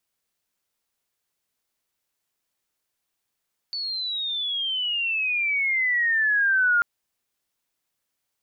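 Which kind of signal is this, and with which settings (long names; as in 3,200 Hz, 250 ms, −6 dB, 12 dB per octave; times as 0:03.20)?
glide logarithmic 4,500 Hz → 1,400 Hz −27 dBFS → −16.5 dBFS 3.09 s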